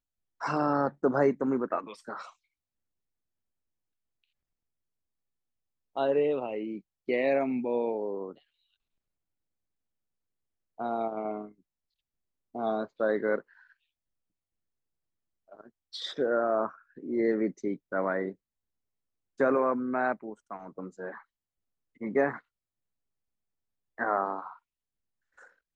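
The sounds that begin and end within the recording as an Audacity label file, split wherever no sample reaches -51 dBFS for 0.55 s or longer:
5.960000	8.380000	sound
10.780000	11.520000	sound
12.550000	13.720000	sound
15.490000	18.340000	sound
19.390000	21.220000	sound
22.010000	22.400000	sound
23.980000	24.570000	sound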